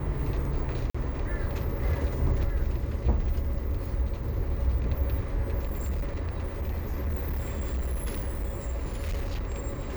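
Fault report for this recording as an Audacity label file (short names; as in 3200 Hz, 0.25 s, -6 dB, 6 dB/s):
0.900000	0.940000	gap 45 ms
5.640000	9.610000	clipped -26 dBFS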